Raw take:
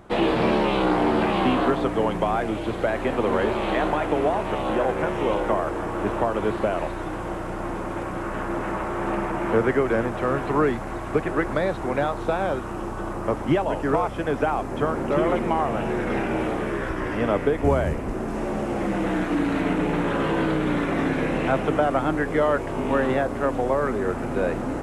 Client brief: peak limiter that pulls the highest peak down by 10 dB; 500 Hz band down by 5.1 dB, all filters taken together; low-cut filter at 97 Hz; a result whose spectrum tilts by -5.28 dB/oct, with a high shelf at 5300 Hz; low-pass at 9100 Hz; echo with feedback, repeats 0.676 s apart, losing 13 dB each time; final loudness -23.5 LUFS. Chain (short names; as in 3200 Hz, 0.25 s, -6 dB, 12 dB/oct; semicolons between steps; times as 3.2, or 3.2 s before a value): HPF 97 Hz; LPF 9100 Hz; bell 500 Hz -6.5 dB; high shelf 5300 Hz -6.5 dB; limiter -20.5 dBFS; feedback echo 0.676 s, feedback 22%, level -13 dB; gain +6.5 dB